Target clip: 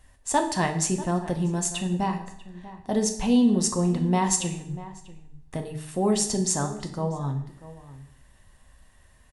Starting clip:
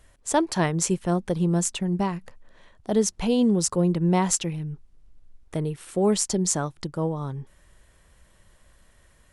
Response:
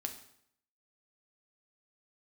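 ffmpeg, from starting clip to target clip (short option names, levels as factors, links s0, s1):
-filter_complex "[0:a]aecho=1:1:1.1:0.35,asplit=2[s0][s1];[s1]adelay=641.4,volume=0.158,highshelf=f=4000:g=-14.4[s2];[s0][s2]amix=inputs=2:normalize=0[s3];[1:a]atrim=start_sample=2205[s4];[s3][s4]afir=irnorm=-1:irlink=0"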